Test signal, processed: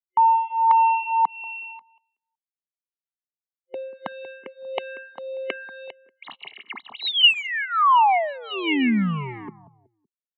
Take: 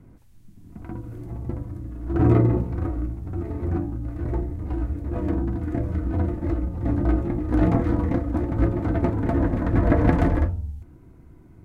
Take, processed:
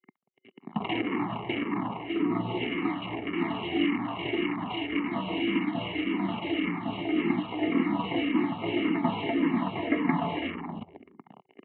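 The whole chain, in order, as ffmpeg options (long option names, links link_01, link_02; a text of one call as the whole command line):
ffmpeg -i in.wav -filter_complex "[0:a]acrusher=bits=5:mix=0:aa=0.5,areverse,acompressor=threshold=-34dB:ratio=16,areverse,superequalizer=7b=2.24:12b=3.55,aresample=8000,aresample=44100,asplit=2[link_01][link_02];[link_02]adelay=187,lowpass=frequency=810:poles=1,volume=-16dB,asplit=2[link_03][link_04];[link_04]adelay=187,lowpass=frequency=810:poles=1,volume=0.37,asplit=2[link_05][link_06];[link_06]adelay=187,lowpass=frequency=810:poles=1,volume=0.37[link_07];[link_03][link_05][link_07]amix=inputs=3:normalize=0[link_08];[link_01][link_08]amix=inputs=2:normalize=0,acontrast=73,highpass=frequency=210:width=0.5412,highpass=frequency=210:width=1.3066,aecho=1:1:1:0.81,asplit=2[link_09][link_10];[link_10]afreqshift=-1.8[link_11];[link_09][link_11]amix=inputs=2:normalize=1,volume=9dB" out.wav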